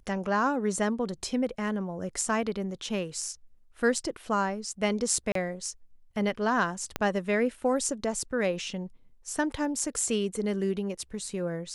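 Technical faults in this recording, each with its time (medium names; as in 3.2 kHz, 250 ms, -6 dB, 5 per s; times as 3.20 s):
5.32–5.35 s: dropout 33 ms
6.96 s: pop -13 dBFS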